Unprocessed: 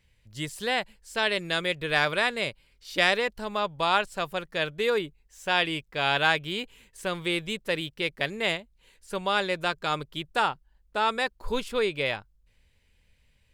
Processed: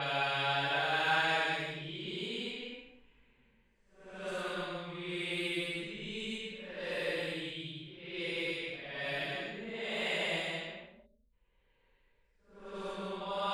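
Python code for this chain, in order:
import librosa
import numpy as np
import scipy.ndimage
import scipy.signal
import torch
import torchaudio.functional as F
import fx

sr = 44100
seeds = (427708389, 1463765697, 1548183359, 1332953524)

y = fx.paulstretch(x, sr, seeds[0], factor=4.1, window_s=0.25, from_s=5.99)
y = fx.env_lowpass(y, sr, base_hz=1500.0, full_db=-24.5)
y = fx.spec_box(y, sr, start_s=11.06, length_s=0.27, low_hz=640.0, high_hz=3500.0, gain_db=-19)
y = F.gain(torch.from_numpy(y), -8.0).numpy()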